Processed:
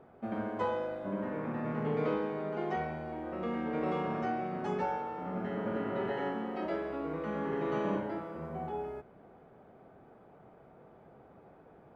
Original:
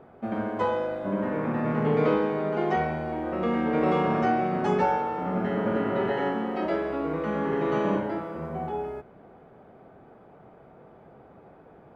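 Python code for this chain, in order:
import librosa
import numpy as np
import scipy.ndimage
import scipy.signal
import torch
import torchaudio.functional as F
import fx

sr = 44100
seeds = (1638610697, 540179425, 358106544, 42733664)

y = fx.rider(x, sr, range_db=3, speed_s=2.0)
y = F.gain(torch.from_numpy(y), -8.5).numpy()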